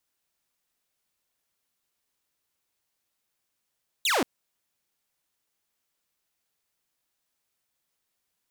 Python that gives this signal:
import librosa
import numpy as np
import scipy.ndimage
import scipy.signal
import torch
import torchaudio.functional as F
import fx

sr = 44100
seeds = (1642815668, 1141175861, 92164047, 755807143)

y = fx.laser_zap(sr, level_db=-19.0, start_hz=4100.0, end_hz=220.0, length_s=0.18, wave='saw')